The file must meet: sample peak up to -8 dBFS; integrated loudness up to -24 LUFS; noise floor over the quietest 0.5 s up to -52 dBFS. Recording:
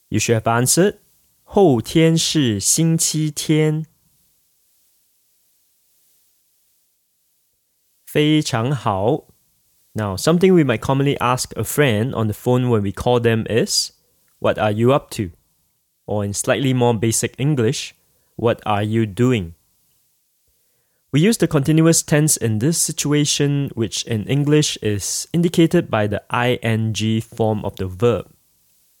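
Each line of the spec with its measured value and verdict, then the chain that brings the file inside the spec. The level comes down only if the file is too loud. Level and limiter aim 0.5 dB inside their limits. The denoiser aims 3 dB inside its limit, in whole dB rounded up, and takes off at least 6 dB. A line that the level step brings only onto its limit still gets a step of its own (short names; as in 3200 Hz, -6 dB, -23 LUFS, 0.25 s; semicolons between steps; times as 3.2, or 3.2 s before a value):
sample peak -3.5 dBFS: fail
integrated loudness -18.0 LUFS: fail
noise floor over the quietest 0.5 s -66 dBFS: OK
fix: gain -6.5 dB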